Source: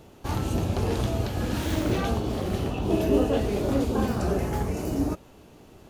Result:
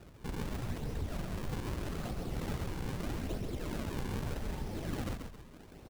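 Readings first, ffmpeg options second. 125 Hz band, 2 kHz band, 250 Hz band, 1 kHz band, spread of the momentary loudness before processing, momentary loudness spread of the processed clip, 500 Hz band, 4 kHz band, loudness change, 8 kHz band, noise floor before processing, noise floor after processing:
−10.5 dB, −9.0 dB, −14.0 dB, −13.0 dB, 6 LU, 3 LU, −16.5 dB, −10.5 dB, −12.5 dB, −10.0 dB, −51 dBFS, −54 dBFS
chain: -filter_complex "[0:a]aeval=exprs='0.355*(cos(1*acos(clip(val(0)/0.355,-1,1)))-cos(1*PI/2))+0.0794*(cos(4*acos(clip(val(0)/0.355,-1,1)))-cos(4*PI/2))+0.0282*(cos(5*acos(clip(val(0)/0.355,-1,1)))-cos(5*PI/2))':channel_layout=same,acrossover=split=220|3000[link_01][link_02][link_03];[link_02]acompressor=threshold=-28dB:ratio=6[link_04];[link_01][link_04][link_03]amix=inputs=3:normalize=0,afftfilt=real='hypot(re,im)*cos(2*PI*random(0))':imag='hypot(re,im)*sin(2*PI*random(1))':win_size=512:overlap=0.75,flanger=delay=0.1:depth=5.4:regen=-37:speed=1.2:shape=sinusoidal,lowshelf=frequency=100:gain=5.5,acrusher=samples=39:mix=1:aa=0.000001:lfo=1:lforange=62.4:lforate=0.8,alimiter=level_in=2.5dB:limit=-24dB:level=0:latency=1:release=92,volume=-2.5dB,acompressor=threshold=-43dB:ratio=1.5,asplit=6[link_05][link_06][link_07][link_08][link_09][link_10];[link_06]adelay=134,afreqshift=-41,volume=-6dB[link_11];[link_07]adelay=268,afreqshift=-82,volume=-14dB[link_12];[link_08]adelay=402,afreqshift=-123,volume=-21.9dB[link_13];[link_09]adelay=536,afreqshift=-164,volume=-29.9dB[link_14];[link_10]adelay=670,afreqshift=-205,volume=-37.8dB[link_15];[link_05][link_11][link_12][link_13][link_14][link_15]amix=inputs=6:normalize=0,volume=1dB"

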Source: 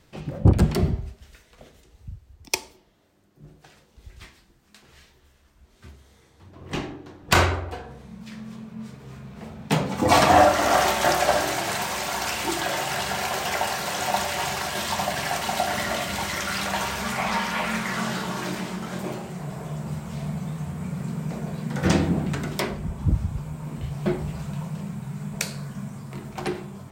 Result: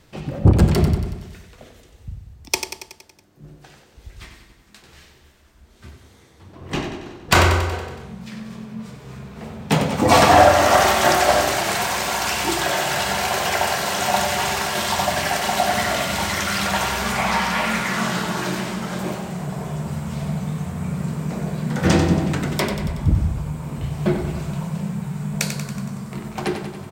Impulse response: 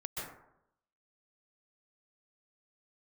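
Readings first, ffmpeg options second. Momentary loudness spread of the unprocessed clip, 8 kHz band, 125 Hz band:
17 LU, +5.0 dB, +5.0 dB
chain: -af "acontrast=35,aecho=1:1:93|186|279|372|465|558|651:0.398|0.235|0.139|0.0818|0.0482|0.0285|0.0168,volume=-1dB"

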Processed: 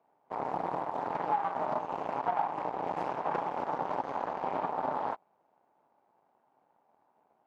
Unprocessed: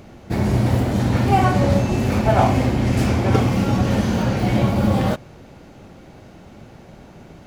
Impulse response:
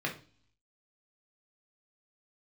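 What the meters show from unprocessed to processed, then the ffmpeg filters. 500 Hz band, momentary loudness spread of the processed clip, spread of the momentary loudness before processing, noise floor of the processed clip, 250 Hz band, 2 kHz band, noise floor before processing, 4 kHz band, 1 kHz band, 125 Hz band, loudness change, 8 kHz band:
−13.0 dB, 4 LU, 4 LU, −73 dBFS, −25.0 dB, −16.0 dB, −44 dBFS, −23.5 dB, −7.0 dB, −33.5 dB, −15.0 dB, below −30 dB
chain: -af "afreqshift=54,aeval=exprs='0.794*(cos(1*acos(clip(val(0)/0.794,-1,1)))-cos(1*PI/2))+0.1*(cos(7*acos(clip(val(0)/0.794,-1,1)))-cos(7*PI/2))+0.0891*(cos(8*acos(clip(val(0)/0.794,-1,1)))-cos(8*PI/2))':channel_layout=same,bandpass=frequency=870:width_type=q:width=3.2:csg=0,acompressor=threshold=-28dB:ratio=4"

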